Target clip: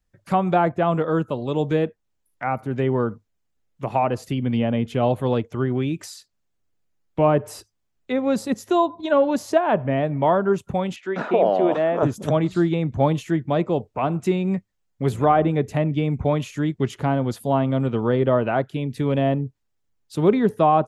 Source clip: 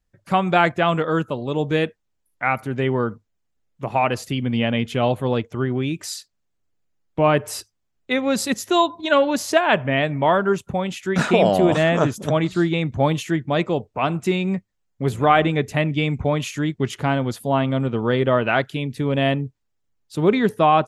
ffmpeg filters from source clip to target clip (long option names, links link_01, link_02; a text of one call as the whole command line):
ffmpeg -i in.wav -filter_complex "[0:a]acrossover=split=590|1100[link_01][link_02][link_03];[link_03]acompressor=threshold=-37dB:ratio=6[link_04];[link_01][link_02][link_04]amix=inputs=3:normalize=0,asettb=1/sr,asplit=3[link_05][link_06][link_07];[link_05]atrim=end=10.964[link_08];[link_06]atrim=start=10.96:end=12.03,asetpts=PTS-STARTPTS,afade=type=in:duration=0.004:curve=qsin,afade=type=out:start_time=1.066:duration=0.004:curve=qsin,highpass=340,lowpass=3400[link_09];[link_07]atrim=start=12.026[link_10];[link_08][link_09]acrossfade=duration=0.004:curve1=hsin:curve2=qsin[link_11];[link_11][link_10]acrossfade=duration=0.004:curve1=qsin:curve2=hsin" out.wav